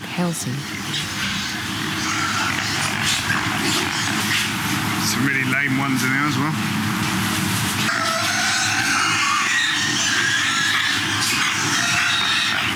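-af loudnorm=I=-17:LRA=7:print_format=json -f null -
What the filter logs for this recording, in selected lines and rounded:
"input_i" : "-18.6",
"input_tp" : "-7.6",
"input_lra" : "3.1",
"input_thresh" : "-28.6",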